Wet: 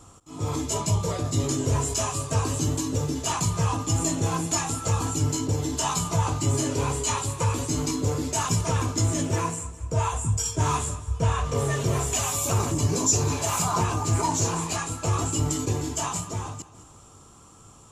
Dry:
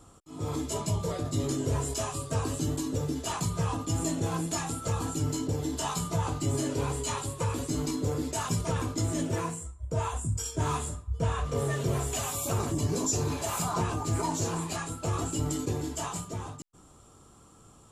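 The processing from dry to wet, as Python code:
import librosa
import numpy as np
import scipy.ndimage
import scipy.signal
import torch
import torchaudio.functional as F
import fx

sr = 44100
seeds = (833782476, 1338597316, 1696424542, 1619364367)

y = fx.graphic_eq_15(x, sr, hz=(100, 1000, 2500, 6300), db=(4, 4, 4, 7))
y = fx.echo_feedback(y, sr, ms=206, feedback_pct=46, wet_db=-17.0)
y = y * librosa.db_to_amplitude(2.5)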